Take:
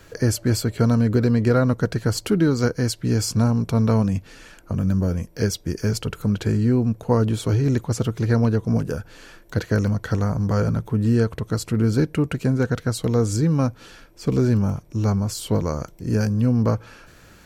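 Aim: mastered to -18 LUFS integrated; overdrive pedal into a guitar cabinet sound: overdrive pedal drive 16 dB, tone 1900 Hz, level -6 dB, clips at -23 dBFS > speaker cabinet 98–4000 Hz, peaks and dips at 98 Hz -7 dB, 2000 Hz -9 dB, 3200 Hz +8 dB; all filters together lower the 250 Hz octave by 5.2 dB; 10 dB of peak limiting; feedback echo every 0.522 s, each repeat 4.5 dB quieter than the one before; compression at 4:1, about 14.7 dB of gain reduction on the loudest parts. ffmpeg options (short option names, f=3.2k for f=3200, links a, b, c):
-filter_complex "[0:a]equalizer=f=250:t=o:g=-6,acompressor=threshold=-35dB:ratio=4,alimiter=level_in=5.5dB:limit=-24dB:level=0:latency=1,volume=-5.5dB,aecho=1:1:522|1044|1566|2088|2610|3132|3654|4176|4698:0.596|0.357|0.214|0.129|0.0772|0.0463|0.0278|0.0167|0.01,asplit=2[a][b];[b]highpass=f=720:p=1,volume=16dB,asoftclip=type=tanh:threshold=-23dB[c];[a][c]amix=inputs=2:normalize=0,lowpass=f=1.9k:p=1,volume=-6dB,highpass=98,equalizer=f=98:t=q:w=4:g=-7,equalizer=f=2k:t=q:w=4:g=-9,equalizer=f=3.2k:t=q:w=4:g=8,lowpass=f=4k:w=0.5412,lowpass=f=4k:w=1.3066,volume=20dB"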